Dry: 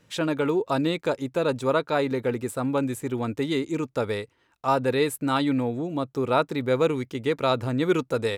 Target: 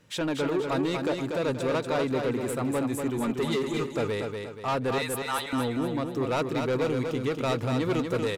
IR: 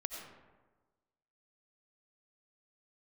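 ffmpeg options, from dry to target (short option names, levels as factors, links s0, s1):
-filter_complex "[0:a]asettb=1/sr,asplit=3[s0][s1][s2];[s0]atrim=end=3.174[s3];[s1]atrim=start=3.17:end=3.83,asetpts=PTS-STARTPTS,afade=t=in:d=0.004:c=qsin,afade=t=out:st=0.656:d=0.004:c=qsin,aecho=1:1:5:0.95,atrim=end_sample=29106[s4];[s2]atrim=start=3.826[s5];[s3][s4]acrossfade=d=0.004:c1=hsin:c2=qsin[s6];[s6][s5]acrossfade=d=0.004:c1=qsin:c2=hsin,asettb=1/sr,asplit=3[s7][s8][s9];[s7]atrim=end=4.984[s10];[s8]atrim=start=4.98:end=5.53,asetpts=PTS-STARTPTS,afade=t=in:d=0.004:c=qsin,afade=t=out:st=0.546:d=0.004:c=qsin,highpass=f=730:w=0.5412,highpass=f=730:w=1.3066[s11];[s9]atrim=start=5.526[s12];[s10][s11]acrossfade=d=0.004:c1=hsin:c2=qsin[s13];[s13][s12]acrossfade=d=0.004:c1=qsin:c2=hsin,asoftclip=type=tanh:threshold=0.0708,aecho=1:1:239|478|717|956|1195:0.562|0.236|0.0992|0.0417|0.0175"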